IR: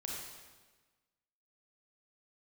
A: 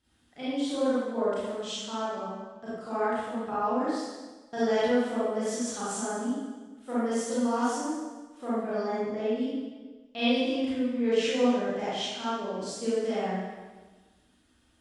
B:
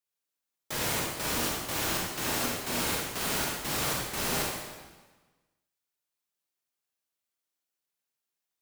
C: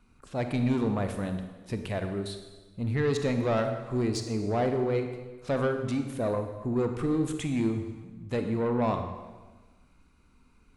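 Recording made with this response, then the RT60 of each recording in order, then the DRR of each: B; 1.3 s, 1.3 s, 1.3 s; -11.5 dB, -3.0 dB, 6.0 dB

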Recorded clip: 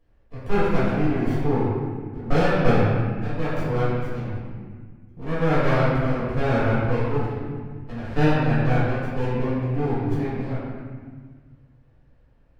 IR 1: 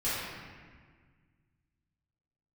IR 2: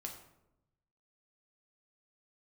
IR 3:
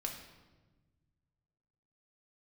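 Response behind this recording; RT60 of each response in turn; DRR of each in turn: 1; 1.7 s, 0.85 s, 1.3 s; -13.0 dB, 1.0 dB, 1.0 dB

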